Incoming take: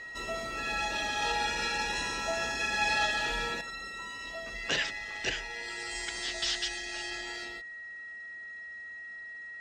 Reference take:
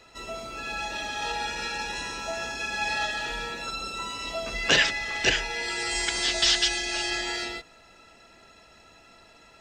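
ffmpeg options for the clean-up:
-af "bandreject=f=1.9k:w=30,asetnsamples=n=441:p=0,asendcmd='3.61 volume volume 10dB',volume=0dB"

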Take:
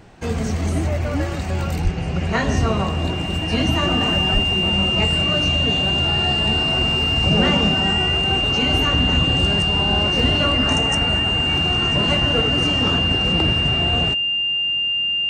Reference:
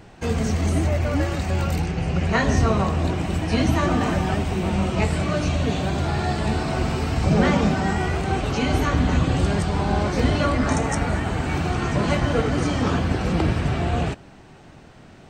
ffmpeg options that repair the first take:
-filter_complex "[0:a]bandreject=f=2.8k:w=30,asplit=3[a][b][c];[a]afade=t=out:st=1.83:d=0.02[d];[b]highpass=f=140:w=0.5412,highpass=f=140:w=1.3066,afade=t=in:st=1.83:d=0.02,afade=t=out:st=1.95:d=0.02[e];[c]afade=t=in:st=1.95:d=0.02[f];[d][e][f]amix=inputs=3:normalize=0,asplit=3[g][h][i];[g]afade=t=out:st=4.33:d=0.02[j];[h]highpass=f=140:w=0.5412,highpass=f=140:w=1.3066,afade=t=in:st=4.33:d=0.02,afade=t=out:st=4.45:d=0.02[k];[i]afade=t=in:st=4.45:d=0.02[l];[j][k][l]amix=inputs=3:normalize=0"

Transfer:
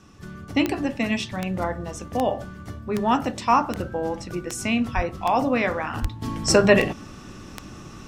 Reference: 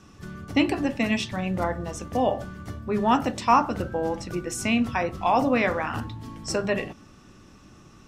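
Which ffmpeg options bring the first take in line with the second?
-filter_complex "[0:a]adeclick=t=4,asplit=3[a][b][c];[a]afade=t=out:st=4.95:d=0.02[d];[b]highpass=f=140:w=0.5412,highpass=f=140:w=1.3066,afade=t=in:st=4.95:d=0.02,afade=t=out:st=5.07:d=0.02[e];[c]afade=t=in:st=5.07:d=0.02[f];[d][e][f]amix=inputs=3:normalize=0,asplit=3[g][h][i];[g]afade=t=out:st=6.01:d=0.02[j];[h]highpass=f=140:w=0.5412,highpass=f=140:w=1.3066,afade=t=in:st=6.01:d=0.02,afade=t=out:st=6.13:d=0.02[k];[i]afade=t=in:st=6.13:d=0.02[l];[j][k][l]amix=inputs=3:normalize=0,asetnsamples=n=441:p=0,asendcmd='6.22 volume volume -10dB',volume=0dB"

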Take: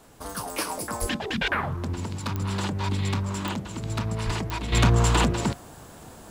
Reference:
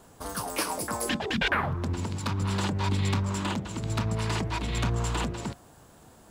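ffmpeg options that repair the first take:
-filter_complex "[0:a]adeclick=t=4,asplit=3[a][b][c];[a]afade=t=out:st=1:d=0.02[d];[b]highpass=f=140:w=0.5412,highpass=f=140:w=1.3066,afade=t=in:st=1:d=0.02,afade=t=out:st=1.12:d=0.02[e];[c]afade=t=in:st=1.12:d=0.02[f];[d][e][f]amix=inputs=3:normalize=0,asplit=3[g][h][i];[g]afade=t=out:st=4.25:d=0.02[j];[h]highpass=f=140:w=0.5412,highpass=f=140:w=1.3066,afade=t=in:st=4.25:d=0.02,afade=t=out:st=4.37:d=0.02[k];[i]afade=t=in:st=4.37:d=0.02[l];[j][k][l]amix=inputs=3:normalize=0,agate=range=-21dB:threshold=-37dB,asetnsamples=n=441:p=0,asendcmd='4.72 volume volume -8.5dB',volume=0dB"

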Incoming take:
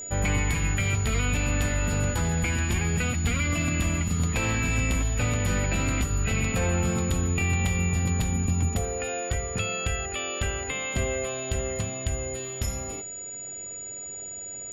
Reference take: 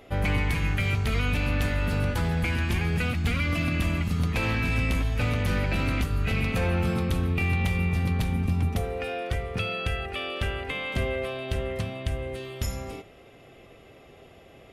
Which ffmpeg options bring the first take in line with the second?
-af "bandreject=f=6.9k:w=30"

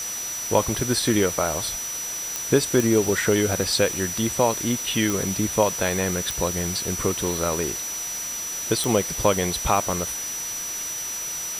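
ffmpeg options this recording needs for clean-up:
-af "adeclick=t=4,bandreject=f=5.9k:w=30,afftdn=nr=30:nf=-31"

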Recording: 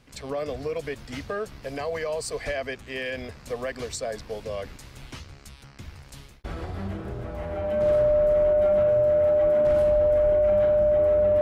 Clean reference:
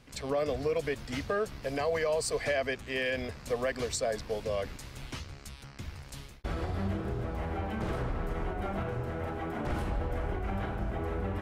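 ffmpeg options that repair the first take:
-filter_complex "[0:a]bandreject=f=600:w=30,asplit=3[a][b][c];[a]afade=t=out:st=2.45:d=0.02[d];[b]highpass=f=140:w=0.5412,highpass=f=140:w=1.3066,afade=t=in:st=2.45:d=0.02,afade=t=out:st=2.57:d=0.02[e];[c]afade=t=in:st=2.57:d=0.02[f];[d][e][f]amix=inputs=3:normalize=0,asplit=3[g][h][i];[g]afade=t=out:st=9.42:d=0.02[j];[h]highpass=f=140:w=0.5412,highpass=f=140:w=1.3066,afade=t=in:st=9.42:d=0.02,afade=t=out:st=9.54:d=0.02[k];[i]afade=t=in:st=9.54:d=0.02[l];[j][k][l]amix=inputs=3:normalize=0,asplit=3[m][n][o];[m]afade=t=out:st=10.23:d=0.02[p];[n]highpass=f=140:w=0.5412,highpass=f=140:w=1.3066,afade=t=in:st=10.23:d=0.02,afade=t=out:st=10.35:d=0.02[q];[o]afade=t=in:st=10.35:d=0.02[r];[p][q][r]amix=inputs=3:normalize=0"

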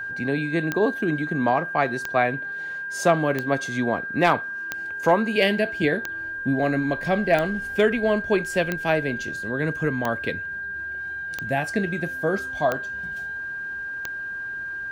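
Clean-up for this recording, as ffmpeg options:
-af "adeclick=t=4,bandreject=f=1.6k:w=30"

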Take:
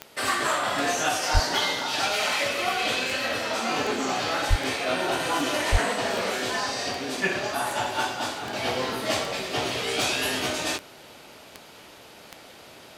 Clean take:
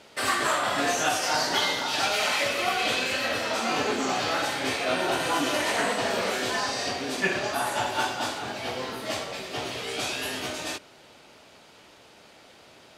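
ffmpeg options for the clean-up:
-filter_complex "[0:a]adeclick=t=4,asplit=3[a][b][c];[a]afade=t=out:st=1.33:d=0.02[d];[b]highpass=f=140:w=0.5412,highpass=f=140:w=1.3066,afade=t=in:st=1.33:d=0.02,afade=t=out:st=1.45:d=0.02[e];[c]afade=t=in:st=1.45:d=0.02[f];[d][e][f]amix=inputs=3:normalize=0,asplit=3[g][h][i];[g]afade=t=out:st=4.49:d=0.02[j];[h]highpass=f=140:w=0.5412,highpass=f=140:w=1.3066,afade=t=in:st=4.49:d=0.02,afade=t=out:st=4.61:d=0.02[k];[i]afade=t=in:st=4.61:d=0.02[l];[j][k][l]amix=inputs=3:normalize=0,asplit=3[m][n][o];[m]afade=t=out:st=5.71:d=0.02[p];[n]highpass=f=140:w=0.5412,highpass=f=140:w=1.3066,afade=t=in:st=5.71:d=0.02,afade=t=out:st=5.83:d=0.02[q];[o]afade=t=in:st=5.83:d=0.02[r];[p][q][r]amix=inputs=3:normalize=0,agate=range=-21dB:threshold=-39dB,asetnsamples=n=441:p=0,asendcmd='8.53 volume volume -5dB',volume=0dB"

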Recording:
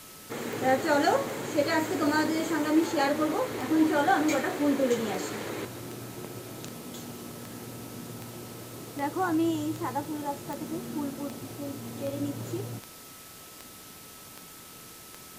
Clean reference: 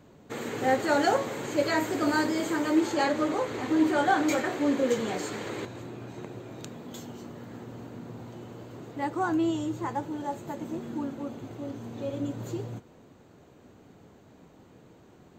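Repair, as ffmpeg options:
-af "adeclick=t=4,bandreject=f=1.3k:w=30,afwtdn=0.0045"

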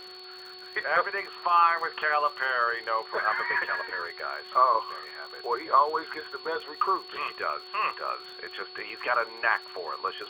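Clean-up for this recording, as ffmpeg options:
-af "adeclick=t=4,bandreject=f=369.5:t=h:w=4,bandreject=f=739:t=h:w=4,bandreject=f=1.1085k:t=h:w=4,bandreject=f=1.478k:t=h:w=4,bandreject=f=4.4k:w=30,afftdn=nr=28:nf=-44"

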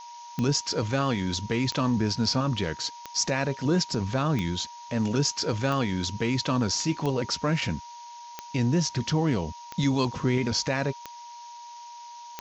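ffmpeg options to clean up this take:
-af "adeclick=t=4,bandreject=f=950:w=30,afftdn=nr=29:nf=-44"

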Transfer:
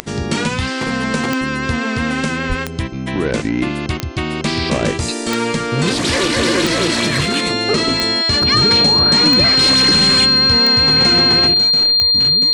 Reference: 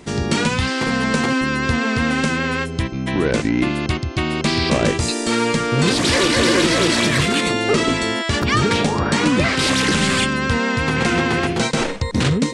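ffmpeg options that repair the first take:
-filter_complex "[0:a]adeclick=t=4,bandreject=f=4.2k:w=30,asplit=3[a][b][c];[a]afade=t=out:st=2.48:d=0.02[d];[b]highpass=f=140:w=0.5412,highpass=f=140:w=1.3066,afade=t=in:st=2.48:d=0.02,afade=t=out:st=2.6:d=0.02[e];[c]afade=t=in:st=2.6:d=0.02[f];[d][e][f]amix=inputs=3:normalize=0,asetnsamples=n=441:p=0,asendcmd='11.54 volume volume 11dB',volume=0dB"

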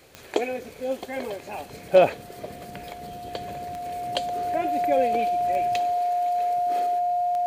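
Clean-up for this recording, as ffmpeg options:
-af "adeclick=t=4,bandreject=f=710:w=30"

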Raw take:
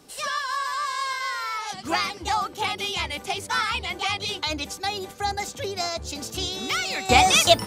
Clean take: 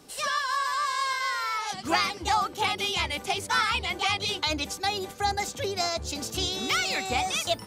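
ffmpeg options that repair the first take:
-af "asetnsamples=n=441:p=0,asendcmd='7.09 volume volume -11dB',volume=0dB"

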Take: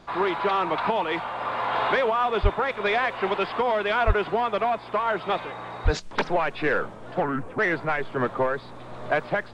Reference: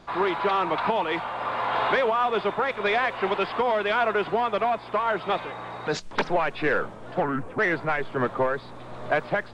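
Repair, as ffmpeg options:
-filter_complex "[0:a]asplit=3[a][b][c];[a]afade=t=out:st=2.42:d=0.02[d];[b]highpass=f=140:w=0.5412,highpass=f=140:w=1.3066,afade=t=in:st=2.42:d=0.02,afade=t=out:st=2.54:d=0.02[e];[c]afade=t=in:st=2.54:d=0.02[f];[d][e][f]amix=inputs=3:normalize=0,asplit=3[g][h][i];[g]afade=t=out:st=4.06:d=0.02[j];[h]highpass=f=140:w=0.5412,highpass=f=140:w=1.3066,afade=t=in:st=4.06:d=0.02,afade=t=out:st=4.18:d=0.02[k];[i]afade=t=in:st=4.18:d=0.02[l];[j][k][l]amix=inputs=3:normalize=0,asplit=3[m][n][o];[m]afade=t=out:st=5.84:d=0.02[p];[n]highpass=f=140:w=0.5412,highpass=f=140:w=1.3066,afade=t=in:st=5.84:d=0.02,afade=t=out:st=5.96:d=0.02[q];[o]afade=t=in:st=5.96:d=0.02[r];[p][q][r]amix=inputs=3:normalize=0"

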